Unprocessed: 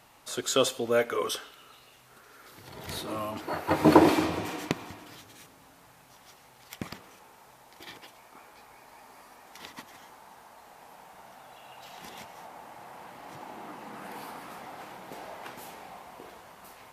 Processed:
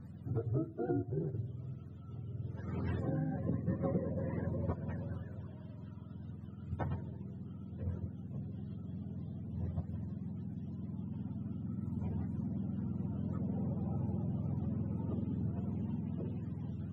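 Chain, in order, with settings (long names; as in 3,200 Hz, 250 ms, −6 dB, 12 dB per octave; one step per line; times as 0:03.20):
frequency axis turned over on the octave scale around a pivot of 410 Hz
low-shelf EQ 380 Hz +6.5 dB
downward compressor 10 to 1, threshold −35 dBFS, peak gain reduction 26.5 dB
level +3 dB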